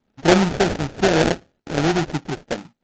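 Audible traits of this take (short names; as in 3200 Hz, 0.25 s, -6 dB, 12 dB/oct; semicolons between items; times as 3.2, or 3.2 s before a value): phasing stages 6, 0.89 Hz, lowest notch 550–3500 Hz; aliases and images of a low sample rate 1100 Hz, jitter 20%; SBC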